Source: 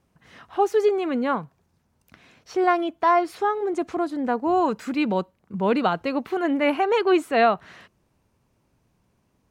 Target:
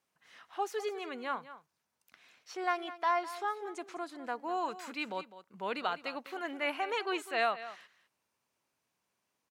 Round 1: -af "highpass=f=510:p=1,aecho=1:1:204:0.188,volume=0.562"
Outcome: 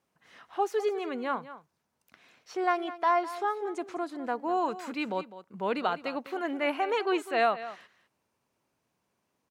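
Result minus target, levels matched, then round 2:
2 kHz band -3.0 dB
-af "highpass=f=1600:p=1,aecho=1:1:204:0.188,volume=0.562"

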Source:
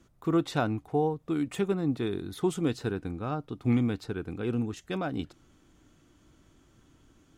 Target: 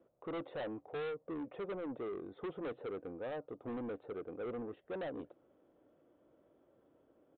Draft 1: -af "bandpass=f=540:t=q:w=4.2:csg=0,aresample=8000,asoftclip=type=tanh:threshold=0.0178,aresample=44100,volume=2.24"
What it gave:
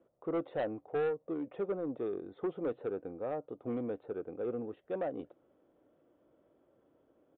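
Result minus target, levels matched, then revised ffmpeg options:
saturation: distortion -6 dB
-af "bandpass=f=540:t=q:w=4.2:csg=0,aresample=8000,asoftclip=type=tanh:threshold=0.00596,aresample=44100,volume=2.24"

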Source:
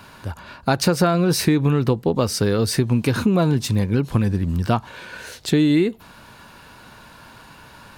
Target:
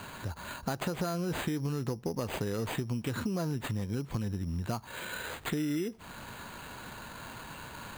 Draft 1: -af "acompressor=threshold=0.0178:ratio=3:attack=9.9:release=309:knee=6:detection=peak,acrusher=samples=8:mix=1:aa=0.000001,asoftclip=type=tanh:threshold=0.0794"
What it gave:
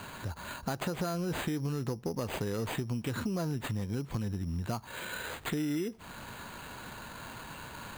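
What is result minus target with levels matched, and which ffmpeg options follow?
saturation: distortion +11 dB
-af "acompressor=threshold=0.0178:ratio=3:attack=9.9:release=309:knee=6:detection=peak,acrusher=samples=8:mix=1:aa=0.000001,asoftclip=type=tanh:threshold=0.158"

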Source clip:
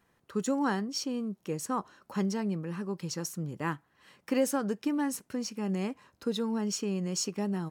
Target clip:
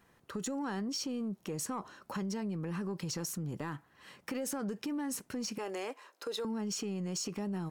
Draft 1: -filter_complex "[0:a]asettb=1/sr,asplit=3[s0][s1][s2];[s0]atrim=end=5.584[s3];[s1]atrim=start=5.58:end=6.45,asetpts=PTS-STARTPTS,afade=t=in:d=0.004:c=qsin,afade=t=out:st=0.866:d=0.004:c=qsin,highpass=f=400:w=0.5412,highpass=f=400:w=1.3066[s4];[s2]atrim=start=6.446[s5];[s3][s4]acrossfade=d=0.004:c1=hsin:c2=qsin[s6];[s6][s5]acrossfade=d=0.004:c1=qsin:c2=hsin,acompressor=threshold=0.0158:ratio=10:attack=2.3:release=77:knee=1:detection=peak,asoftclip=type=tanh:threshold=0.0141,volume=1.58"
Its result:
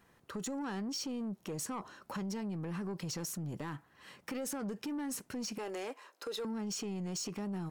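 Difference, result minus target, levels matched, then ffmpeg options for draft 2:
saturation: distortion +10 dB
-filter_complex "[0:a]asettb=1/sr,asplit=3[s0][s1][s2];[s0]atrim=end=5.584[s3];[s1]atrim=start=5.58:end=6.45,asetpts=PTS-STARTPTS,afade=t=in:d=0.004:c=qsin,afade=t=out:st=0.866:d=0.004:c=qsin,highpass=f=400:w=0.5412,highpass=f=400:w=1.3066[s4];[s2]atrim=start=6.446[s5];[s3][s4]acrossfade=d=0.004:c1=hsin:c2=qsin[s6];[s6][s5]acrossfade=d=0.004:c1=qsin:c2=hsin,acompressor=threshold=0.0158:ratio=10:attack=2.3:release=77:knee=1:detection=peak,asoftclip=type=tanh:threshold=0.0299,volume=1.58"

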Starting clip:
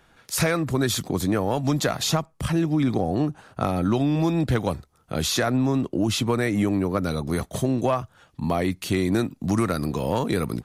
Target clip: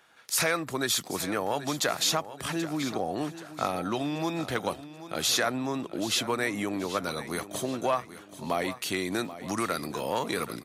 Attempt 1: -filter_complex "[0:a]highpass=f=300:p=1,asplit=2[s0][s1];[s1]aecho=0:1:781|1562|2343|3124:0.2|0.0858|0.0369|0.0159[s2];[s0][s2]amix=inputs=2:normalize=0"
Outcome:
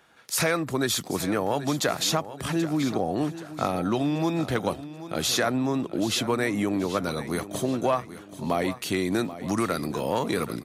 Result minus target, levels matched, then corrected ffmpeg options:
250 Hz band +3.0 dB
-filter_complex "[0:a]highpass=f=770:p=1,asplit=2[s0][s1];[s1]aecho=0:1:781|1562|2343|3124:0.2|0.0858|0.0369|0.0159[s2];[s0][s2]amix=inputs=2:normalize=0"

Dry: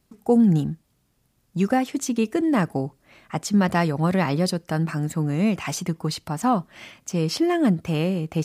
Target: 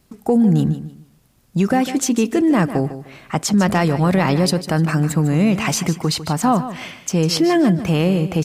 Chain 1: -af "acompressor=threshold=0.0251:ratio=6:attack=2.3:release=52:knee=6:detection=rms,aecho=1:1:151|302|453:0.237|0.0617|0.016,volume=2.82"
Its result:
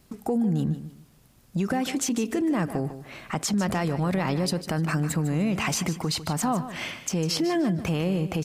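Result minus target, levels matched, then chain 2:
compression: peak gain reduction +10 dB
-af "acompressor=threshold=0.1:ratio=6:attack=2.3:release=52:knee=6:detection=rms,aecho=1:1:151|302|453:0.237|0.0617|0.016,volume=2.82"

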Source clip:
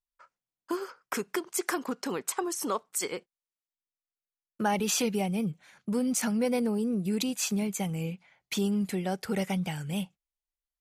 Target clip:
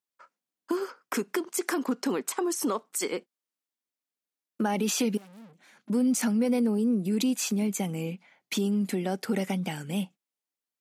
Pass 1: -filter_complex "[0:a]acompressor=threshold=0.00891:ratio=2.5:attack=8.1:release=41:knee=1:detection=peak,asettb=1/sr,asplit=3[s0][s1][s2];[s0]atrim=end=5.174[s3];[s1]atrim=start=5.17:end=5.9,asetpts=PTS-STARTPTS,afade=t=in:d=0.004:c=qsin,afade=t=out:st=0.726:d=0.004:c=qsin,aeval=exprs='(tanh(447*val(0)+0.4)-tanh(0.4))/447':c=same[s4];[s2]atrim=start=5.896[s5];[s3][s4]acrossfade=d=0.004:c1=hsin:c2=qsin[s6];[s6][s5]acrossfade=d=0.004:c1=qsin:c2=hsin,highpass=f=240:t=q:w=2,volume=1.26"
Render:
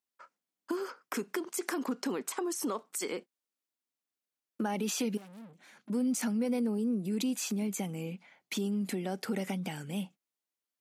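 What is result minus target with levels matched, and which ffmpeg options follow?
compression: peak gain reduction +5.5 dB
-filter_complex "[0:a]acompressor=threshold=0.0266:ratio=2.5:attack=8.1:release=41:knee=1:detection=peak,asettb=1/sr,asplit=3[s0][s1][s2];[s0]atrim=end=5.174[s3];[s1]atrim=start=5.17:end=5.9,asetpts=PTS-STARTPTS,afade=t=in:d=0.004:c=qsin,afade=t=out:st=0.726:d=0.004:c=qsin,aeval=exprs='(tanh(447*val(0)+0.4)-tanh(0.4))/447':c=same[s4];[s2]atrim=start=5.896[s5];[s3][s4]acrossfade=d=0.004:c1=hsin:c2=qsin[s6];[s6][s5]acrossfade=d=0.004:c1=qsin:c2=hsin,highpass=f=240:t=q:w=2,volume=1.26"

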